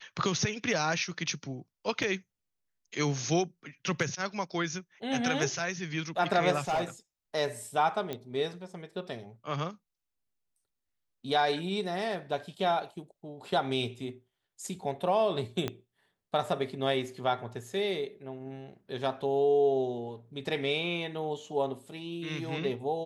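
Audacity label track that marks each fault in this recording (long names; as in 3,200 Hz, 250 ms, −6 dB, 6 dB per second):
2.030000	2.030000	drop-out 4.6 ms
6.680000	6.820000	clipping −25 dBFS
8.130000	8.130000	click −21 dBFS
15.680000	15.680000	click −17 dBFS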